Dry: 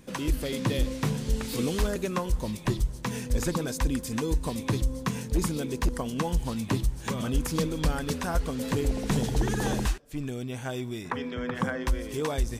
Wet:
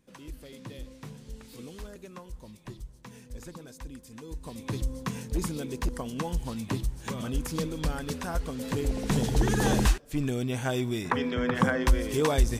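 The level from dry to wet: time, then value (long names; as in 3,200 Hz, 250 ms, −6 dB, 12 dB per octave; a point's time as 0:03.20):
0:04.19 −15.5 dB
0:04.83 −3.5 dB
0:08.61 −3.5 dB
0:09.85 +4.5 dB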